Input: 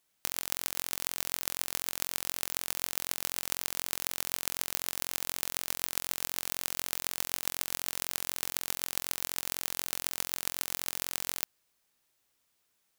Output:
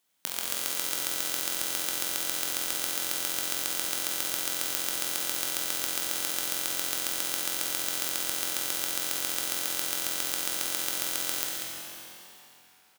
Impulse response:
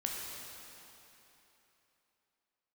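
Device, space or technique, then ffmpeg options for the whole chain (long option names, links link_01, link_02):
PA in a hall: -filter_complex "[0:a]highpass=130,equalizer=frequency=3300:width_type=o:width=0.34:gain=3,aecho=1:1:191:0.447[link_01];[1:a]atrim=start_sample=2205[link_02];[link_01][link_02]afir=irnorm=-1:irlink=0,volume=1dB"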